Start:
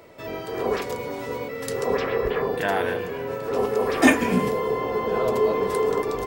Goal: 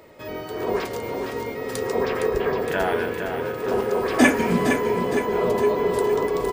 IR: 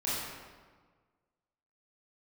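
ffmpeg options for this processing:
-af "aecho=1:1:444|888|1332|1776|2220|2664:0.447|0.232|0.121|0.0628|0.0327|0.017,asetrate=42336,aresample=44100"

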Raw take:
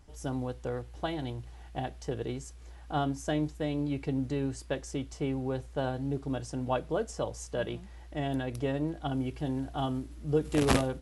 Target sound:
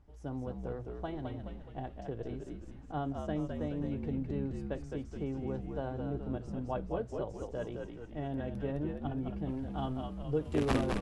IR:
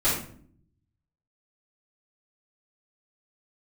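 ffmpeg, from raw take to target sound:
-filter_complex "[0:a]asetnsamples=n=441:p=0,asendcmd='9.49 lowpass f 2800',lowpass=f=1.1k:p=1,asplit=8[a][b][c][d][e][f][g][h];[b]adelay=211,afreqshift=-64,volume=-4.5dB[i];[c]adelay=422,afreqshift=-128,volume=-10.2dB[j];[d]adelay=633,afreqshift=-192,volume=-15.9dB[k];[e]adelay=844,afreqshift=-256,volume=-21.5dB[l];[f]adelay=1055,afreqshift=-320,volume=-27.2dB[m];[g]adelay=1266,afreqshift=-384,volume=-32.9dB[n];[h]adelay=1477,afreqshift=-448,volume=-38.6dB[o];[a][i][j][k][l][m][n][o]amix=inputs=8:normalize=0,volume=-5dB"

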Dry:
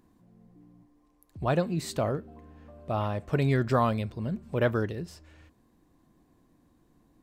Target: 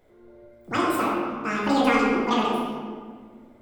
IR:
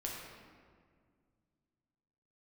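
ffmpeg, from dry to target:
-filter_complex "[1:a]atrim=start_sample=2205,asetrate=25137,aresample=44100[a];[0:a][a]afir=irnorm=-1:irlink=0,asetrate=88200,aresample=44100"

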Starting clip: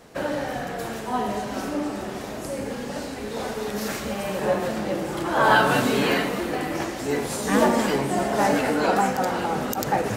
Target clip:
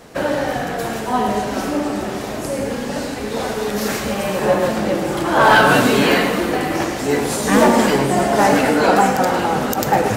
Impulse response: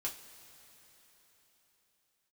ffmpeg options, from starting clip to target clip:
-filter_complex "[0:a]volume=12.5dB,asoftclip=hard,volume=-12.5dB,asplit=2[a][b];[1:a]atrim=start_sample=2205,adelay=103[c];[b][c]afir=irnorm=-1:irlink=0,volume=-10dB[d];[a][d]amix=inputs=2:normalize=0,volume=7dB"

